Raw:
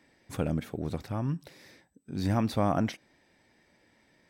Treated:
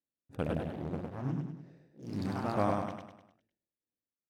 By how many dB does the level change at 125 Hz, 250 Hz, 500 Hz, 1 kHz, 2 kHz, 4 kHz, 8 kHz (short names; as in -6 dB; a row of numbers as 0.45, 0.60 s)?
-5.5, -5.0, -2.0, -2.0, -3.0, -8.5, -11.0 dB